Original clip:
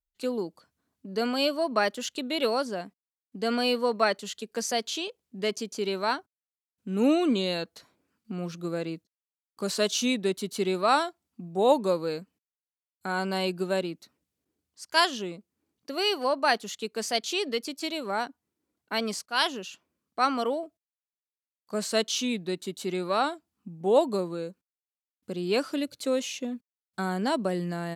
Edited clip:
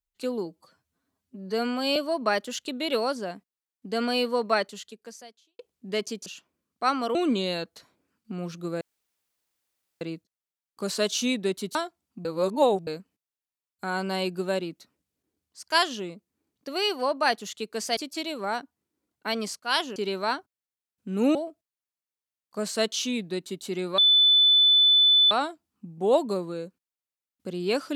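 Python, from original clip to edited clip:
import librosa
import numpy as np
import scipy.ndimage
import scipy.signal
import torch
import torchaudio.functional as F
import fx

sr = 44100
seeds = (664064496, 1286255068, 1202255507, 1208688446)

y = fx.edit(x, sr, fx.stretch_span(start_s=0.46, length_s=1.0, factor=1.5),
    fx.fade_out_span(start_s=4.09, length_s=1.0, curve='qua'),
    fx.swap(start_s=5.76, length_s=1.39, other_s=19.62, other_length_s=0.89),
    fx.insert_room_tone(at_s=8.81, length_s=1.2),
    fx.cut(start_s=10.55, length_s=0.42),
    fx.reverse_span(start_s=11.47, length_s=0.62),
    fx.cut(start_s=17.19, length_s=0.44),
    fx.insert_tone(at_s=23.14, length_s=1.33, hz=3500.0, db=-15.0), tone=tone)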